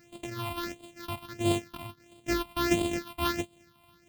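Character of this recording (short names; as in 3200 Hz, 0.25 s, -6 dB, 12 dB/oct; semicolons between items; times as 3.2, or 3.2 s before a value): a buzz of ramps at a fixed pitch in blocks of 128 samples; phasing stages 6, 1.5 Hz, lowest notch 430–1600 Hz; noise-modulated level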